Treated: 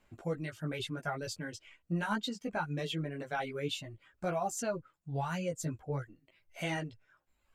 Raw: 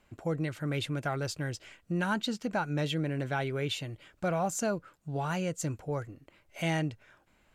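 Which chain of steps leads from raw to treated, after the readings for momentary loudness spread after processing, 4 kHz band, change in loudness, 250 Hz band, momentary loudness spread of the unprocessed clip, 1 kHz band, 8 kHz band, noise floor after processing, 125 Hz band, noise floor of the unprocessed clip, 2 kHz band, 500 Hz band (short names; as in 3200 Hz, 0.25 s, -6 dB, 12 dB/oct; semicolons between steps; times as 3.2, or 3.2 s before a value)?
8 LU, -3.0 dB, -4.0 dB, -5.0 dB, 7 LU, -2.5 dB, -4.0 dB, -77 dBFS, -5.5 dB, -68 dBFS, -3.5 dB, -3.5 dB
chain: reverb removal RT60 1.1 s; chorus voices 4, 0.65 Hz, delay 15 ms, depth 4 ms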